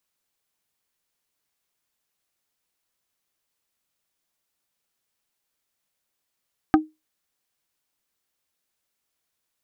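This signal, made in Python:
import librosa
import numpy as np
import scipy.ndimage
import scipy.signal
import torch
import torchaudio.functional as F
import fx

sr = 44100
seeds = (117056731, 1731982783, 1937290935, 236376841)

y = fx.strike_wood(sr, length_s=0.45, level_db=-9.0, body='plate', hz=311.0, decay_s=0.21, tilt_db=3.5, modes=4)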